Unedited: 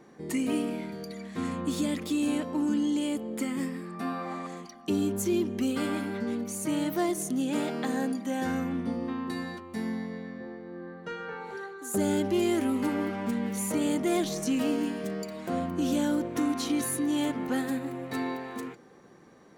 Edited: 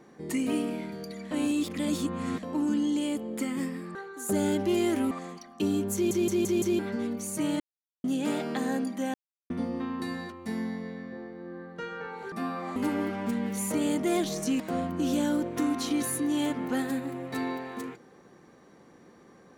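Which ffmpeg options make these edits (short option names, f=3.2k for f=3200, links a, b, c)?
-filter_complex "[0:a]asplit=17[a][b][c][d][e][f][g][h][i][j][k][l][m][n][o][p][q];[a]atrim=end=1.312[r];[b]atrim=start=1.308:end=2.432,asetpts=PTS-STARTPTS,areverse[s];[c]atrim=start=2.428:end=3.952[t];[d]atrim=start=11.598:end=12.762[u];[e]atrim=start=4.388:end=5.392[v];[f]atrim=start=5.218:end=5.392[w];[g]atrim=start=5.218:end=5.392[x];[h]atrim=start=5.218:end=5.392[y];[i]atrim=start=5.218:end=5.392[z];[j]atrim=start=6.068:end=6.88,asetpts=PTS-STARTPTS,afade=t=out:st=0.808:d=0.004:c=hsin[aa];[k]atrim=start=6.88:end=7.32,asetpts=PTS-STARTPTS,volume=0[ab];[l]atrim=start=7.32:end=8.42,asetpts=PTS-STARTPTS,afade=t=in:d=0.004:c=hsin,afade=t=out:st=1.096:d=0.004:c=hsin[ac];[m]atrim=start=8.42:end=8.78,asetpts=PTS-STARTPTS,volume=0[ad];[n]atrim=start=8.78:end=11.602,asetpts=PTS-STARTPTS,afade=t=in:d=0.004:c=hsin[ae];[o]atrim=start=3.948:end=4.392[af];[p]atrim=start=12.758:end=14.602[ag];[q]atrim=start=15.388[ah];[r][s]acrossfade=d=0.004:c1=hsin:c2=hsin[ai];[ai][t]acrossfade=d=0.004:c1=hsin:c2=hsin[aj];[aj][u]acrossfade=d=0.004:c1=hsin:c2=hsin[ak];[ak][v]acrossfade=d=0.004:c1=hsin:c2=hsin[al];[al][w]acrossfade=d=0.004:c1=hsin:c2=hsin[am];[am][x]acrossfade=d=0.004:c1=hsin:c2=hsin[an];[an][y]acrossfade=d=0.004:c1=hsin:c2=hsin[ao];[ao][z]acrossfade=d=0.004:c1=hsin:c2=hsin[ap];[aa][ab][ac][ad][ae]concat=n=5:v=0:a=1[aq];[ap][aq]acrossfade=d=0.004:c1=hsin:c2=hsin[ar];[ar][af]acrossfade=d=0.004:c1=hsin:c2=hsin[as];[as][ag]acrossfade=d=0.004:c1=hsin:c2=hsin[at];[at][ah]acrossfade=d=0.004:c1=hsin:c2=hsin"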